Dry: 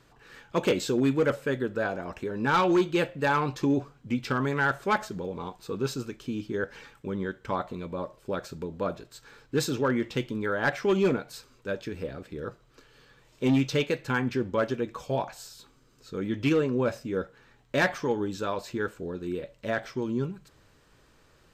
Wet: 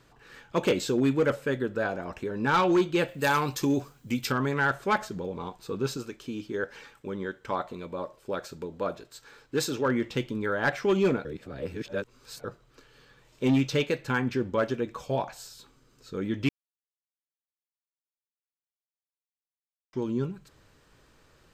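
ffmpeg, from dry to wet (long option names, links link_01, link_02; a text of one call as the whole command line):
ffmpeg -i in.wav -filter_complex "[0:a]asplit=3[link_01][link_02][link_03];[link_01]afade=type=out:start_time=3.07:duration=0.02[link_04];[link_02]aemphasis=mode=production:type=75fm,afade=type=in:start_time=3.07:duration=0.02,afade=type=out:start_time=4.3:duration=0.02[link_05];[link_03]afade=type=in:start_time=4.3:duration=0.02[link_06];[link_04][link_05][link_06]amix=inputs=3:normalize=0,asettb=1/sr,asplit=3[link_07][link_08][link_09];[link_07]atrim=end=5.974[link_10];[link_08]atrim=start=5.97:end=9.86,asetpts=PTS-STARTPTS,afade=type=in:duration=0.004:curve=qsin,afade=type=out:start_time=3.886:duration=0.004:curve=qsin,bass=frequency=250:gain=-6,treble=frequency=4000:gain=1[link_11];[link_09]atrim=start=9.856[link_12];[link_10][link_11]acrossfade=duration=0.004:curve1=hsin:curve2=qsin[link_13];[link_13][link_12]acrossfade=duration=0.004:curve1=qsin:curve2=hsin,asplit=5[link_14][link_15][link_16][link_17][link_18];[link_14]atrim=end=11.252[link_19];[link_15]atrim=start=11.248:end=12.442,asetpts=PTS-STARTPTS,areverse[link_20];[link_16]atrim=start=12.438:end=16.49,asetpts=PTS-STARTPTS,afade=type=out:start_time=4.048:duration=0.004:curve=hsin[link_21];[link_17]atrim=start=16.49:end=19.93,asetpts=PTS-STARTPTS,volume=0[link_22];[link_18]atrim=start=19.93,asetpts=PTS-STARTPTS,afade=type=in:duration=0.004:curve=hsin[link_23];[link_19][link_20]acrossfade=duration=0.004:curve1=hsin:curve2=hsin[link_24];[link_21][link_22][link_23]concat=n=3:v=0:a=1[link_25];[link_24][link_25]acrossfade=duration=0.004:curve1=hsin:curve2=hsin" out.wav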